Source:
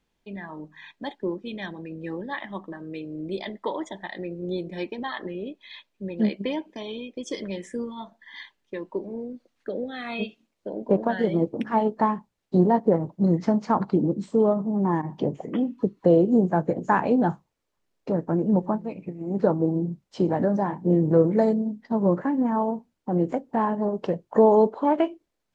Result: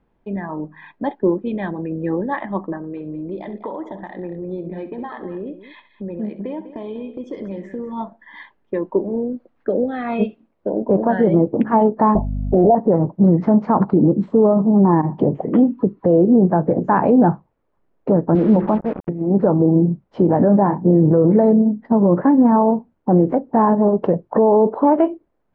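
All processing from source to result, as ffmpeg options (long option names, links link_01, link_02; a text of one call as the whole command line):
ffmpeg -i in.wav -filter_complex "[0:a]asettb=1/sr,asplit=3[link_01][link_02][link_03];[link_01]atrim=end=2.774[link_04];[link_02]atrim=start=2.77:end=7.93,asetpts=PTS-STARTPTS,afade=type=in:duration=0.004:curve=qsin,afade=type=out:start_time=5.156:duration=0.004:curve=qsin,acompressor=threshold=-39dB:ratio=3:attack=3.2:release=140:knee=1:detection=peak,aecho=1:1:66|198:0.224|0.2,atrim=end_sample=227556[link_05];[link_03]atrim=start=7.926[link_06];[link_04][link_05]acrossfade=duration=0.004:curve1=hsin:curve2=qsin[link_07];[link_07][link_06]acrossfade=duration=0.004:curve1=qsin:curve2=hsin,asettb=1/sr,asplit=3[link_08][link_09][link_10];[link_08]atrim=end=12.154[link_11];[link_09]atrim=start=12.15:end=12.75,asetpts=PTS-STARTPTS,afade=type=in:duration=0.004:curve=qsin,afade=type=out:start_time=0.596:duration=0.004:curve=qsin,equalizer=frequency=430:width_type=o:width=2.9:gain=11,aeval=exprs='val(0)+0.0224*(sin(2*PI*50*n/s)+sin(2*PI*2*50*n/s)/2+sin(2*PI*3*50*n/s)/3+sin(2*PI*4*50*n/s)/4+sin(2*PI*5*50*n/s)/5)':channel_layout=same,lowpass=frequency=670:width_type=q:width=8.2[link_12];[link_10]atrim=start=12.746[link_13];[link_11][link_12]acrossfade=duration=0.004:curve1=hsin:curve2=qsin[link_14];[link_14][link_13]acrossfade=duration=0.004:curve1=qsin:curve2=hsin,asettb=1/sr,asplit=3[link_15][link_16][link_17];[link_15]atrim=end=18.354[link_18];[link_16]atrim=start=18.35:end=19.09,asetpts=PTS-STARTPTS,afade=type=in:duration=0.004:curve=qsin,afade=type=out:start_time=0.736:duration=0.004:curve=qsin,highpass=160,lowpass=2300,bandreject=frequency=50:width_type=h:width=6,bandreject=frequency=100:width_type=h:width=6,bandreject=frequency=150:width_type=h:width=6,bandreject=frequency=200:width_type=h:width=6,bandreject=frequency=250:width_type=h:width=6,bandreject=frequency=300:width_type=h:width=6,bandreject=frequency=350:width_type=h:width=6,bandreject=frequency=400:width_type=h:width=6,bandreject=frequency=450:width_type=h:width=6,acrusher=bits=5:mix=0:aa=0.5[link_19];[link_17]atrim=start=19.086[link_20];[link_18][link_19]acrossfade=duration=0.004:curve1=hsin:curve2=qsin[link_21];[link_21][link_20]acrossfade=duration=0.004:curve1=qsin:curve2=hsin,lowpass=1200,alimiter=level_in=16dB:limit=-1dB:release=50:level=0:latency=1,volume=-4.5dB" out.wav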